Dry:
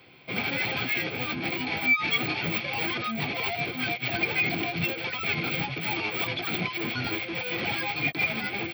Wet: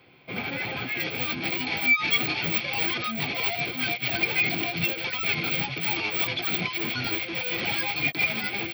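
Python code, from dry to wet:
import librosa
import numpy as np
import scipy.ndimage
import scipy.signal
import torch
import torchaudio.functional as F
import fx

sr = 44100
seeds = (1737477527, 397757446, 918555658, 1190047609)

y = fx.high_shelf(x, sr, hz=3300.0, db=fx.steps((0.0, -5.5), (0.99, 8.0)))
y = y * librosa.db_to_amplitude(-1.0)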